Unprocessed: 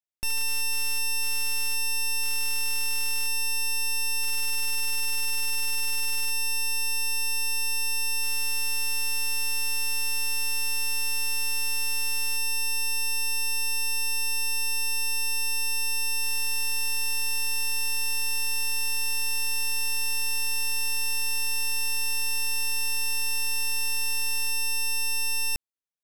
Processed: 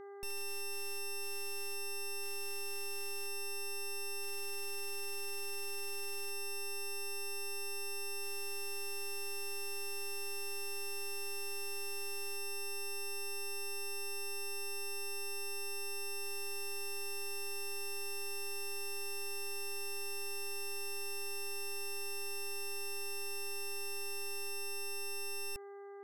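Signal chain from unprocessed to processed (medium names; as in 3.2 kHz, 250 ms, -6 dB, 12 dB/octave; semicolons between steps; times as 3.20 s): peak limiter -36.5 dBFS, peak gain reduction 11.5 dB; mains buzz 400 Hz, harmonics 5, -47 dBFS -9 dB/octave; trim -2.5 dB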